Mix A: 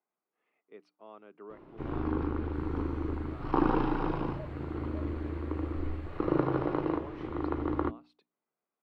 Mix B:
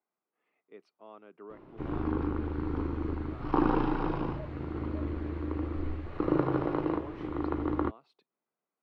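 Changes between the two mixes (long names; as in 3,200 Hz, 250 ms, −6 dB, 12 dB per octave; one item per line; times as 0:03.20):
second sound: add low-pass filter 5,800 Hz 24 dB per octave
master: remove mains-hum notches 60/120/180/240/300 Hz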